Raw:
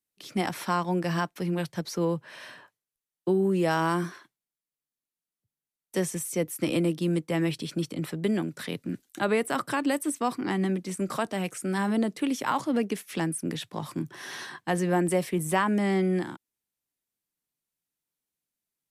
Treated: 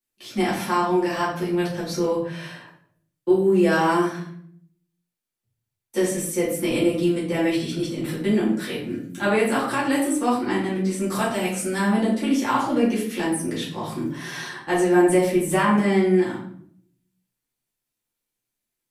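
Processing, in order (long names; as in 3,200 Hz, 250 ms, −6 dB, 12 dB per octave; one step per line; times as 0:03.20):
0:10.97–0:11.80: high-shelf EQ 5,600 Hz +7 dB
convolution reverb RT60 0.60 s, pre-delay 4 ms, DRR −9.5 dB
level −4 dB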